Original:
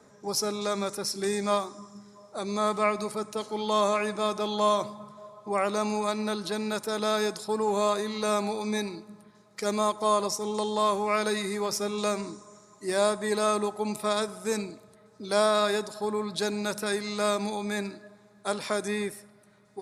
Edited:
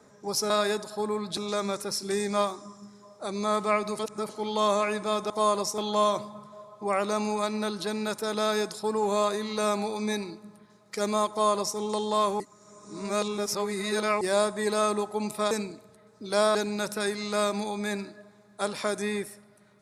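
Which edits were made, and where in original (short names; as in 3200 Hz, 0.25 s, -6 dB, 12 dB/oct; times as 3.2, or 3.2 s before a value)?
3.12–3.42 reverse
9.95–10.43 copy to 4.43
11.05–12.86 reverse
14.16–14.5 cut
15.54–16.41 move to 0.5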